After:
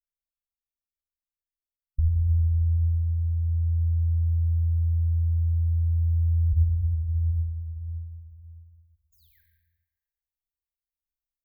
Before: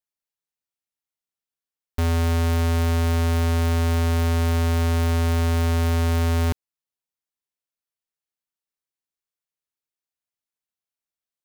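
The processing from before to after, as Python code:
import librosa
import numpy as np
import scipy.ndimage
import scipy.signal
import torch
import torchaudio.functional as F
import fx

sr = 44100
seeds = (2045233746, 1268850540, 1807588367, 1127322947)

p1 = fx.spec_paint(x, sr, seeds[0], shape='fall', start_s=9.12, length_s=0.29, low_hz=1500.0, high_hz=7200.0, level_db=-31.0)
p2 = p1 + 10.0 ** (-11.5 / 20.0) * np.pad(p1, (int(118 * sr / 1000.0), 0))[:len(p1)]
p3 = fx.spec_gate(p2, sr, threshold_db=-10, keep='strong')
p4 = fx.room_shoebox(p3, sr, seeds[1], volume_m3=2400.0, walls='mixed', distance_m=1.6)
p5 = fx.quant_float(p4, sr, bits=2)
p6 = p4 + F.gain(torch.from_numpy(p5), -8.5).numpy()
p7 = fx.rider(p6, sr, range_db=10, speed_s=2.0)
p8 = scipy.signal.sosfilt(scipy.signal.cheby2(4, 50, [180.0, 6000.0], 'bandstop', fs=sr, output='sos'), p7)
p9 = fx.high_shelf_res(p8, sr, hz=5200.0, db=-12.5, q=1.5)
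y = F.gain(torch.from_numpy(p9), 7.0).numpy()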